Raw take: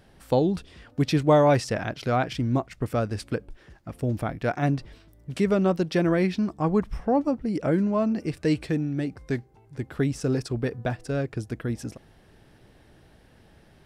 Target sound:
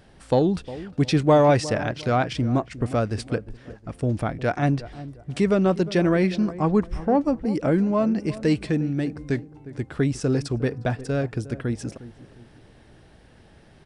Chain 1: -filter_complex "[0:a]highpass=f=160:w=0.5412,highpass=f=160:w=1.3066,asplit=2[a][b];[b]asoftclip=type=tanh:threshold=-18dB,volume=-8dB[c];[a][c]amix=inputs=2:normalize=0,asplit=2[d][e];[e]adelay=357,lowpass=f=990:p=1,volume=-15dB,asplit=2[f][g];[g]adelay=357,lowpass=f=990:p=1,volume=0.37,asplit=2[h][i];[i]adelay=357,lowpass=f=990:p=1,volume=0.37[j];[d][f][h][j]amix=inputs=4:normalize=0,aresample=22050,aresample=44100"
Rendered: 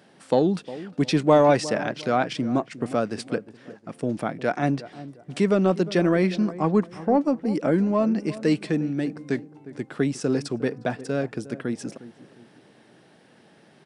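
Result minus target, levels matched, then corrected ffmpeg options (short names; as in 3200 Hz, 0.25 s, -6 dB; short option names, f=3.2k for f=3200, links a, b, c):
125 Hz band -4.5 dB
-filter_complex "[0:a]asplit=2[a][b];[b]asoftclip=type=tanh:threshold=-18dB,volume=-8dB[c];[a][c]amix=inputs=2:normalize=0,asplit=2[d][e];[e]adelay=357,lowpass=f=990:p=1,volume=-15dB,asplit=2[f][g];[g]adelay=357,lowpass=f=990:p=1,volume=0.37,asplit=2[h][i];[i]adelay=357,lowpass=f=990:p=1,volume=0.37[j];[d][f][h][j]amix=inputs=4:normalize=0,aresample=22050,aresample=44100"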